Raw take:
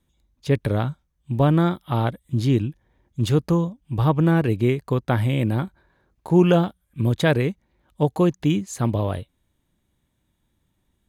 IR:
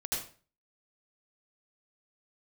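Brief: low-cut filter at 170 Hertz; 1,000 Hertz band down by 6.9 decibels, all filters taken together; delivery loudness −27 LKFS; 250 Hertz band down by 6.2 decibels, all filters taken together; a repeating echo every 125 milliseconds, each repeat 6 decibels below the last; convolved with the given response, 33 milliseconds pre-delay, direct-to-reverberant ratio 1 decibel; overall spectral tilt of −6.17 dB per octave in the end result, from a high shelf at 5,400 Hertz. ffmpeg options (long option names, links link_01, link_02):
-filter_complex "[0:a]highpass=170,equalizer=frequency=250:width_type=o:gain=-7,equalizer=frequency=1000:width_type=o:gain=-9,highshelf=frequency=5400:gain=-3,aecho=1:1:125|250|375|500|625|750:0.501|0.251|0.125|0.0626|0.0313|0.0157,asplit=2[link_01][link_02];[1:a]atrim=start_sample=2205,adelay=33[link_03];[link_02][link_03]afir=irnorm=-1:irlink=0,volume=-5dB[link_04];[link_01][link_04]amix=inputs=2:normalize=0,volume=-2.5dB"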